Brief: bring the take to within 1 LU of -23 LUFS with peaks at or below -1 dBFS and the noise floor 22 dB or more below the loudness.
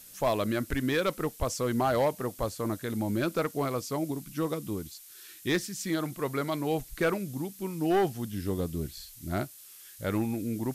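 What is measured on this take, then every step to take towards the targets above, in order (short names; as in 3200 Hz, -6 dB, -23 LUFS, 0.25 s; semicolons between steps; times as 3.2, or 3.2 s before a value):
clipped 0.9%; flat tops at -20.0 dBFS; noise floor -51 dBFS; noise floor target -53 dBFS; loudness -31.0 LUFS; peak -20.0 dBFS; loudness target -23.0 LUFS
-> clip repair -20 dBFS; denoiser 6 dB, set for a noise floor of -51 dBFS; gain +8 dB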